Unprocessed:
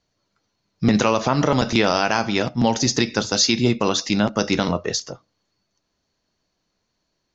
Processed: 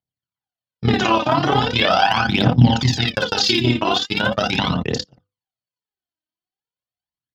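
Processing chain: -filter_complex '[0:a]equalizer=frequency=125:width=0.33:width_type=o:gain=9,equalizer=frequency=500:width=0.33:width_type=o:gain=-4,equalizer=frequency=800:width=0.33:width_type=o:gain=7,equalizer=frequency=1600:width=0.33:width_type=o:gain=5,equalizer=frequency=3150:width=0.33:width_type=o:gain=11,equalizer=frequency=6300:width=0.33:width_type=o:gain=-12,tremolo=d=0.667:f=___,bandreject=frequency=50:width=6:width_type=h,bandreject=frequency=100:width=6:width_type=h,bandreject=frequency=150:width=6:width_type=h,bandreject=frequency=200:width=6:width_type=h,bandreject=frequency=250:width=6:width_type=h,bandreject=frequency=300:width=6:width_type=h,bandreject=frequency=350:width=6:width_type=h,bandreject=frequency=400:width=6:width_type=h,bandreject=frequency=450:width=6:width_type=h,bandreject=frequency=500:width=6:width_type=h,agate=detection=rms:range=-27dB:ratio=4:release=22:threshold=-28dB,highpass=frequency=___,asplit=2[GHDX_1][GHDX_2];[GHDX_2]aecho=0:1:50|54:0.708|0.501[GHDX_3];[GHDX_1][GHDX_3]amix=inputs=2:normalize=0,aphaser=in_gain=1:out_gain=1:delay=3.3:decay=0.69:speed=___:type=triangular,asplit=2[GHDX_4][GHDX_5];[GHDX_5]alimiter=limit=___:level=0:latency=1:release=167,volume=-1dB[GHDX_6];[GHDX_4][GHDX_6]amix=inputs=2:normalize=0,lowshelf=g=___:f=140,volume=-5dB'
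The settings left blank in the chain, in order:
34, 85, 0.4, -8.5dB, 5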